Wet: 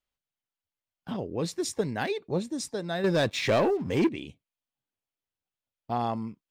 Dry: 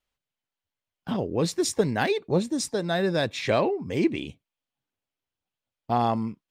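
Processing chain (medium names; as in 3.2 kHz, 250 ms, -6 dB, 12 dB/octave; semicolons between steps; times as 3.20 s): 3.04–4.09 s: waveshaping leveller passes 2; trim -5.5 dB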